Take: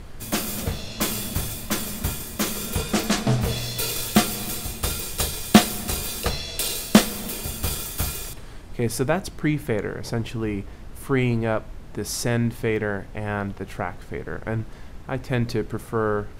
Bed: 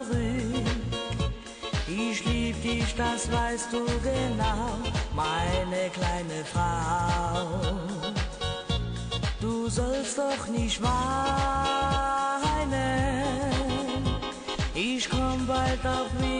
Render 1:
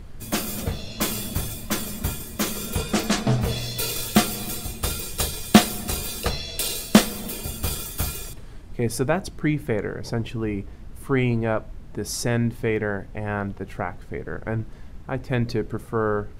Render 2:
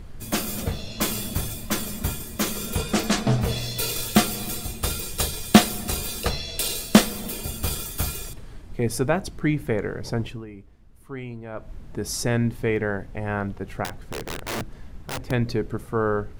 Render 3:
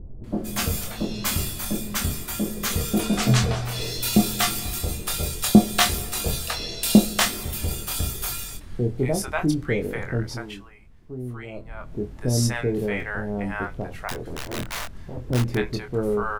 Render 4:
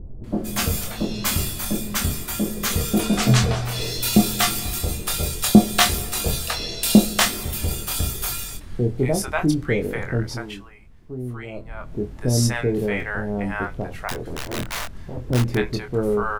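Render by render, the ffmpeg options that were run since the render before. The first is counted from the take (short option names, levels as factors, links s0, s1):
-af "afftdn=nr=6:nf=-39"
-filter_complex "[0:a]asettb=1/sr,asplit=3[s0][s1][s2];[s0]atrim=end=13.844[s3];[s1]atrim=start=13.84:end=15.31,asetpts=PTS-STARTPTS,afade=t=in:d=0.004:c=qsin,afade=t=out:st=1.466:d=0.004:c=qsin,aeval=exprs='(mod(15.8*val(0)+1,2)-1)/15.8':c=same[s4];[s2]atrim=start=15.306[s5];[s3][s4]acrossfade=d=0.004:c1=hsin:c2=qsin[s6];[s6][s5]acrossfade=d=0.004:c1=qsin:c2=hsin,asplit=3[s7][s8][s9];[s7]atrim=end=10.45,asetpts=PTS-STARTPTS,afade=t=out:st=10.24:d=0.21:silence=0.211349[s10];[s8]atrim=start=10.45:end=11.52,asetpts=PTS-STARTPTS,volume=0.211[s11];[s9]atrim=start=11.52,asetpts=PTS-STARTPTS,afade=t=in:d=0.21:silence=0.211349[s12];[s10][s11][s12]concat=n=3:v=0:a=1"
-filter_complex "[0:a]asplit=2[s0][s1];[s1]adelay=24,volume=0.531[s2];[s0][s2]amix=inputs=2:normalize=0,acrossover=split=680[s3][s4];[s4]adelay=240[s5];[s3][s5]amix=inputs=2:normalize=0"
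-af "volume=1.33,alimiter=limit=0.891:level=0:latency=1"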